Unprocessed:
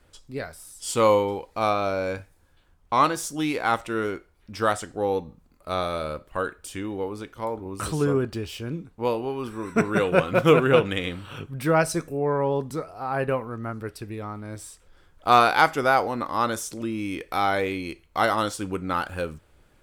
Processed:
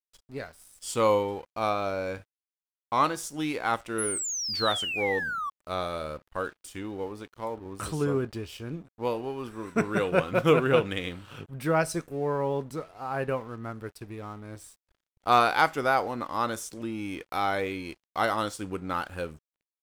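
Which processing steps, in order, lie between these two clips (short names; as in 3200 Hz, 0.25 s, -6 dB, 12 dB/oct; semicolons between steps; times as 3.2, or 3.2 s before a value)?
painted sound fall, 3.98–5.5, 1100–11000 Hz -27 dBFS; crossover distortion -48.5 dBFS; gain -4 dB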